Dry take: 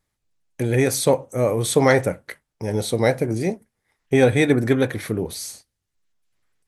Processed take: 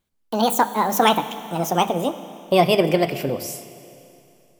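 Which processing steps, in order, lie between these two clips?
speed glide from 186% -> 105%; notches 50/100/150/200 Hz; Schroeder reverb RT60 2.8 s, combs from 29 ms, DRR 12.5 dB

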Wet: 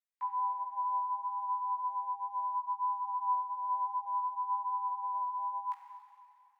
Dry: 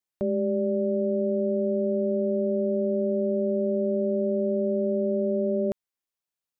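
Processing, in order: rippled Chebyshev high-pass 410 Hz, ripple 9 dB; Schroeder reverb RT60 2.6 s, combs from 31 ms, DRR 2 dB; frequency shift +410 Hz; chorus voices 4, 0.39 Hz, delay 17 ms, depth 3.5 ms; gain -1.5 dB

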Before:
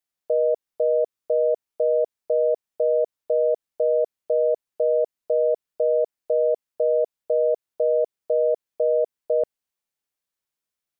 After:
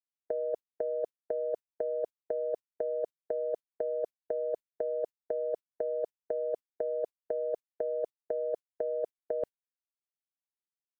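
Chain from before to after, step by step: gate -26 dBFS, range -37 dB; negative-ratio compressor -25 dBFS, ratio -0.5; bell 780 Hz -4.5 dB 0.37 oct; gain -3.5 dB

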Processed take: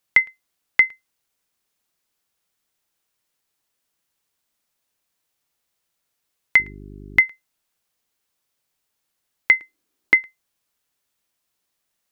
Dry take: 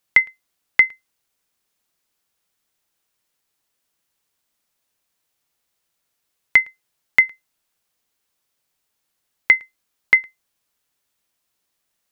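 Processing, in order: 6.58–7.19 buzz 50 Hz, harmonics 8, -38 dBFS -3 dB/oct; 9.6–10.19 bell 320 Hz +14 dB 0.87 oct; gain -1.5 dB

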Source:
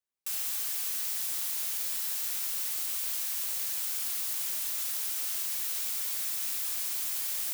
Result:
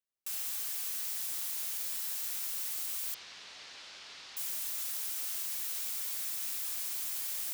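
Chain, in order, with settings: 3.14–4.37 LPF 4700 Hz 24 dB/oct; gain -4 dB

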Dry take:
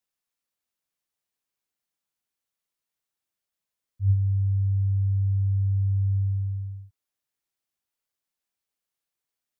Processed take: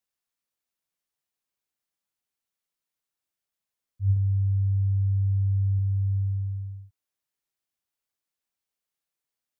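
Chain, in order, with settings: 4.16–5.79 dynamic EQ 240 Hz, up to +4 dB, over -38 dBFS, Q 0.71; gain -1.5 dB

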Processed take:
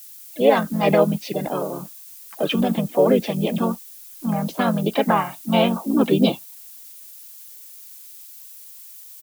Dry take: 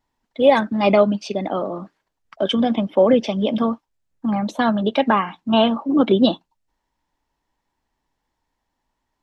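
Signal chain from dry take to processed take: added noise violet -40 dBFS; harmoniser -4 st -3 dB, +4 st -15 dB; gain -3.5 dB

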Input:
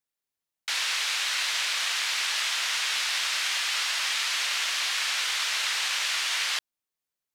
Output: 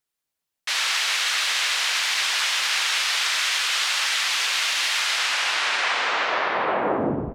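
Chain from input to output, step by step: tape stop at the end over 2.41 s; split-band echo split 990 Hz, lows 0.171 s, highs 88 ms, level -9 dB; harmoniser -3 st -2 dB; gain +2 dB

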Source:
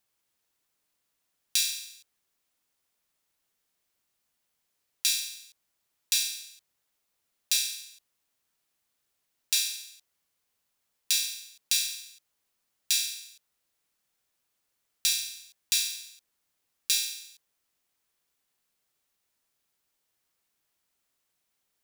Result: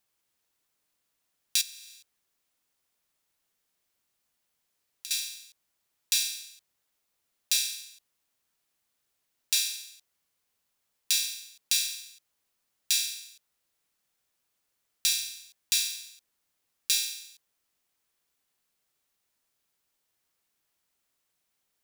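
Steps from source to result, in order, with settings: 1.61–5.11 compressor 16:1, threshold -39 dBFS, peak gain reduction 18.5 dB

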